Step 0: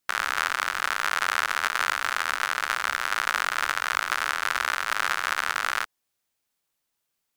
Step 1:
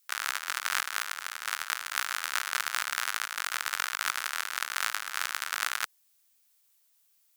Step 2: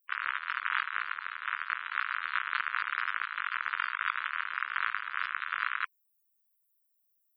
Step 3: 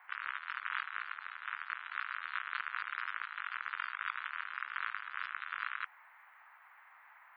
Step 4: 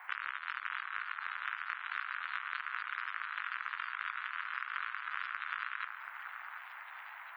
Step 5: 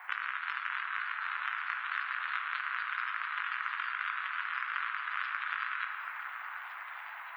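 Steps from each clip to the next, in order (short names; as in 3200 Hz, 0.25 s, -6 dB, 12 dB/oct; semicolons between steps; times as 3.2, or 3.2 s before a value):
negative-ratio compressor -31 dBFS, ratio -0.5; tilt +3.5 dB/oct; gain -5 dB
loudest bins only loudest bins 64; resonant low shelf 660 Hz -8 dB, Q 1.5
band noise 810–2100 Hz -53 dBFS; gain -7 dB
compressor 12:1, threshold -42 dBFS, peak gain reduction 12.5 dB; echo with dull and thin repeats by turns 0.731 s, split 1900 Hz, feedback 64%, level -7 dB; gain +8.5 dB
shoebox room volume 210 m³, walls hard, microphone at 0.33 m; gain +2.5 dB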